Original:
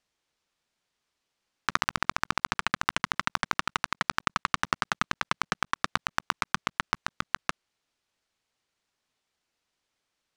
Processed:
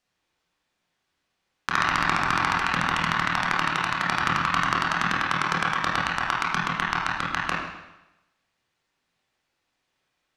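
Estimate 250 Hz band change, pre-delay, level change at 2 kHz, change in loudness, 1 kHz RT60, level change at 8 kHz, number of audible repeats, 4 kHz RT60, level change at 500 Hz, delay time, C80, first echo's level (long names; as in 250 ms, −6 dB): +7.5 dB, 24 ms, +6.5 dB, +6.0 dB, 0.95 s, +1.0 dB, no echo audible, 0.90 s, +6.0 dB, no echo audible, 4.0 dB, no echo audible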